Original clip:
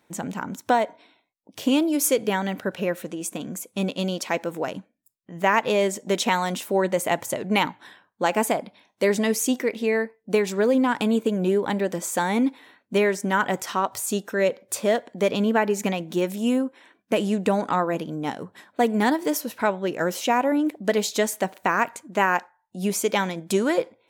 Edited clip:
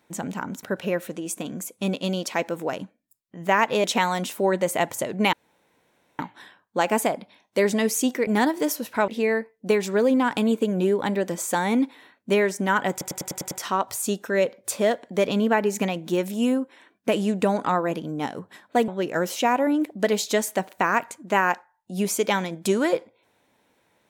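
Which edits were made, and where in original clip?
0.63–2.58 cut
5.79–6.15 cut
7.64 insert room tone 0.86 s
13.55 stutter 0.10 s, 7 plays
18.92–19.73 move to 9.72

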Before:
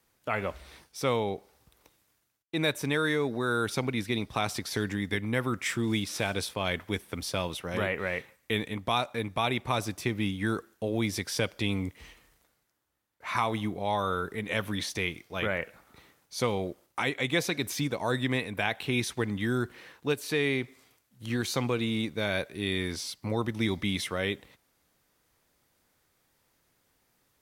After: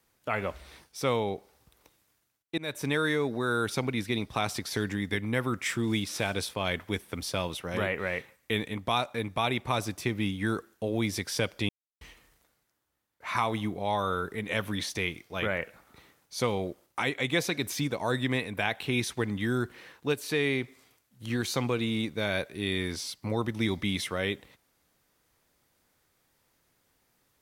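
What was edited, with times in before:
2.58–2.85 fade in, from -21.5 dB
11.69–12.01 mute

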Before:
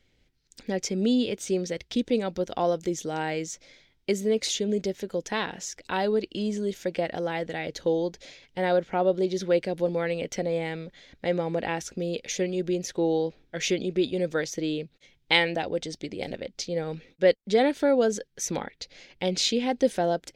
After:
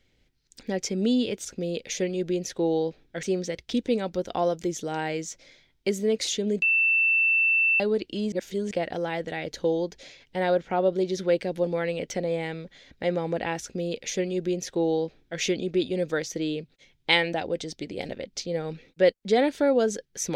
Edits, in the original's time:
4.84–6.02 bleep 2670 Hz -18.5 dBFS
6.54–6.93 reverse
11.84–13.62 copy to 1.45

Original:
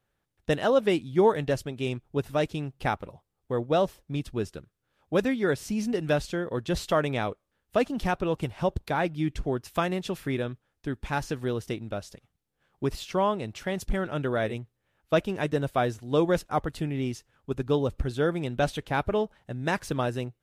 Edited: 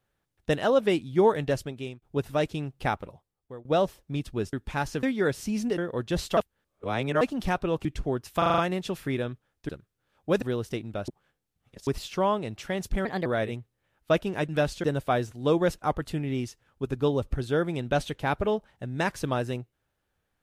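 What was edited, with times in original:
1.65–2.02 fade out, to -23.5 dB
3.02–3.65 fade out, to -23 dB
4.53–5.26 swap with 10.89–11.39
6.01–6.36 move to 15.51
6.95–7.79 reverse
8.43–9.25 cut
9.78 stutter 0.04 s, 6 plays
12.05–12.84 reverse
14.02–14.28 speed 126%

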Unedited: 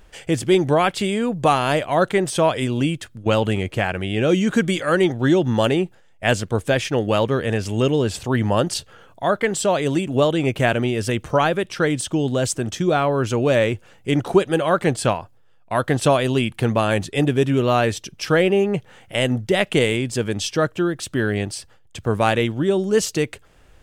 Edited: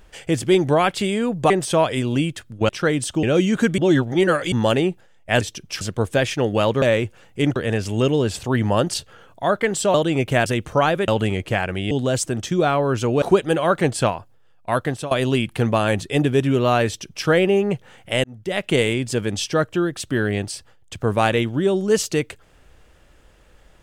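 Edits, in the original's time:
1.5–2.15 cut
3.34–4.17 swap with 11.66–12.2
4.72–5.46 reverse
9.74–10.22 cut
10.74–11.04 cut
13.51–14.25 move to 7.36
15.77–16.14 fade out, to -20 dB
17.9–18.3 copy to 6.35
19.27–19.83 fade in

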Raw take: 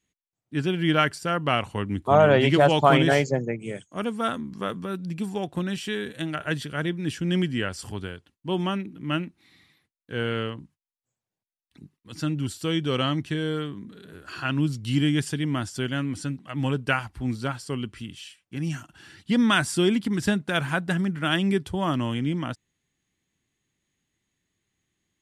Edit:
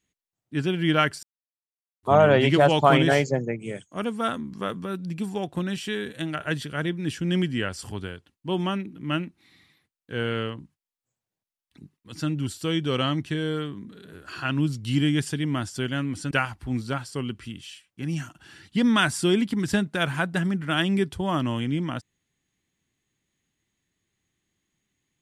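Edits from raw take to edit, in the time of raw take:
1.23–2.03 mute
16.31–16.85 cut

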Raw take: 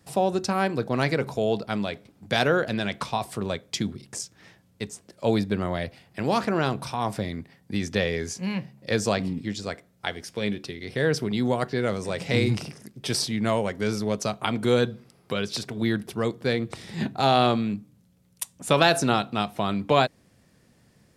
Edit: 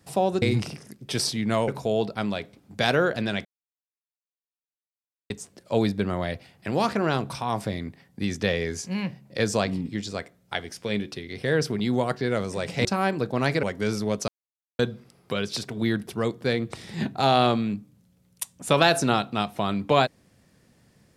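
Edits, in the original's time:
0.42–1.2 swap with 12.37–13.63
2.97–4.82 mute
14.28–14.79 mute

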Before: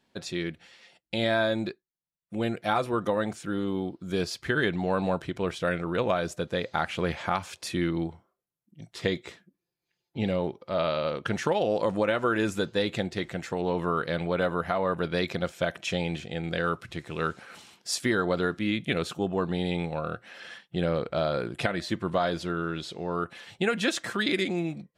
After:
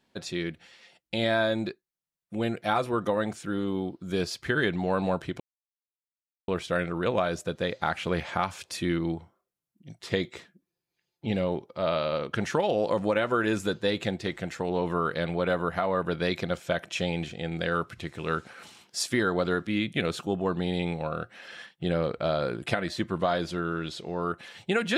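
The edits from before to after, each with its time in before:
5.4 insert silence 1.08 s

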